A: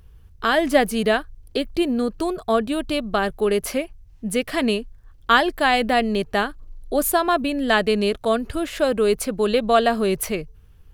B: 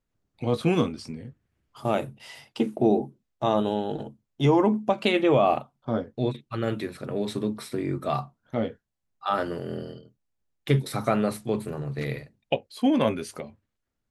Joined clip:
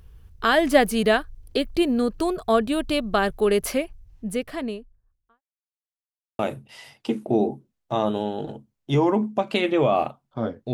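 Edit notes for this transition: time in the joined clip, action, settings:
A
0:03.64–0:05.42: fade out and dull
0:05.42–0:06.39: silence
0:06.39: continue with B from 0:01.90

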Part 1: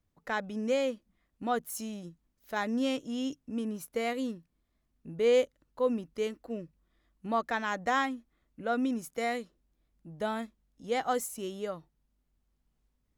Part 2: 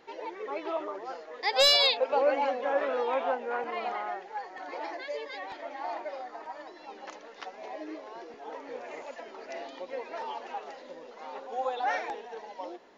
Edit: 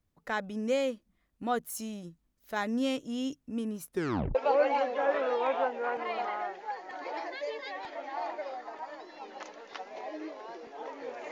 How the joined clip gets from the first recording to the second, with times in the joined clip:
part 1
0:03.89: tape stop 0.46 s
0:04.35: continue with part 2 from 0:02.02

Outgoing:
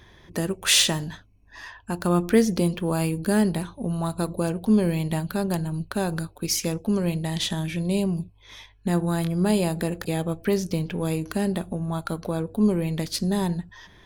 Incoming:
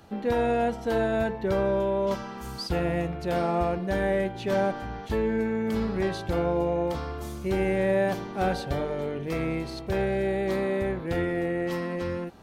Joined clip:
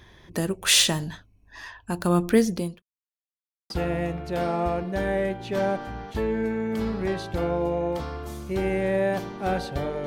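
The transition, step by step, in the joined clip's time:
outgoing
0:02.21–0:02.82: fade out equal-power
0:02.82–0:03.70: silence
0:03.70: continue with incoming from 0:02.65

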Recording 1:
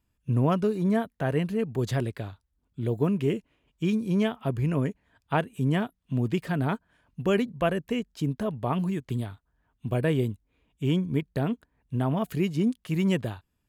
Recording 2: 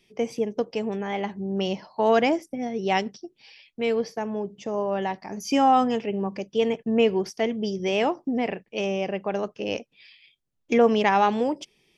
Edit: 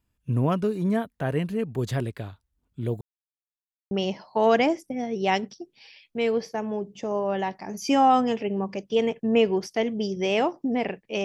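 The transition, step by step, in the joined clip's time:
recording 1
0:03.01–0:03.91: silence
0:03.91: continue with recording 2 from 0:01.54

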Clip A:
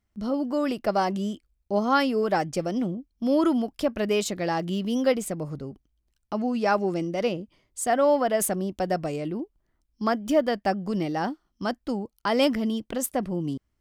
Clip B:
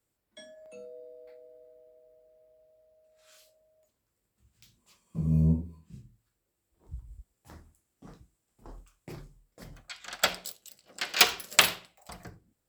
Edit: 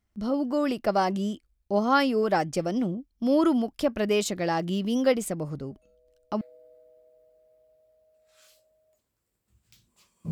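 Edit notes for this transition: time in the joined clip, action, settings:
clip A
0:05.66: mix in clip B from 0:00.56 0.75 s −17.5 dB
0:06.41: continue with clip B from 0:01.31

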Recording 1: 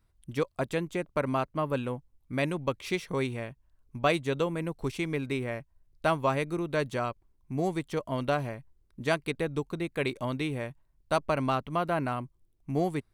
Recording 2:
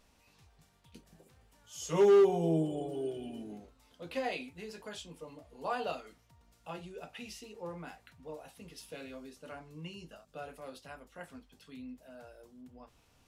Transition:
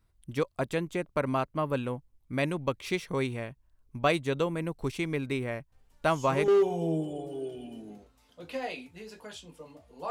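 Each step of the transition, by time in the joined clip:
recording 1
0:05.72: mix in recording 2 from 0:01.34 0.76 s −6 dB
0:06.48: continue with recording 2 from 0:02.10

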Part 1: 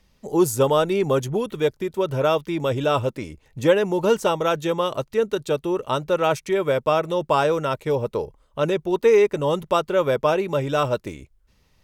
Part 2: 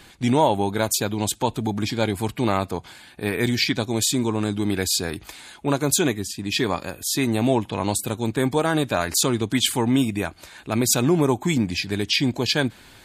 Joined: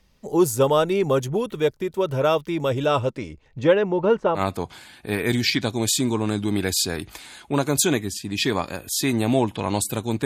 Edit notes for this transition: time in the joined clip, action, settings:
part 1
0:02.85–0:04.42: low-pass filter 12,000 Hz → 1,300 Hz
0:04.38: continue with part 2 from 0:02.52, crossfade 0.08 s

